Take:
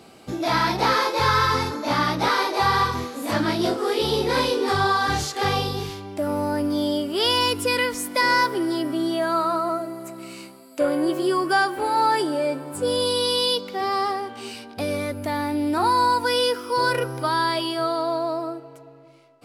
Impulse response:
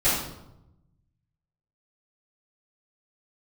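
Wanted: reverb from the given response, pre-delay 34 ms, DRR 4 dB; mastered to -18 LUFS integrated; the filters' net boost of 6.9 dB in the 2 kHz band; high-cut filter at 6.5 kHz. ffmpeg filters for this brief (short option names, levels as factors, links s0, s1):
-filter_complex "[0:a]lowpass=6500,equalizer=f=2000:t=o:g=9,asplit=2[s0][s1];[1:a]atrim=start_sample=2205,adelay=34[s2];[s1][s2]afir=irnorm=-1:irlink=0,volume=0.112[s3];[s0][s3]amix=inputs=2:normalize=0,volume=1.06"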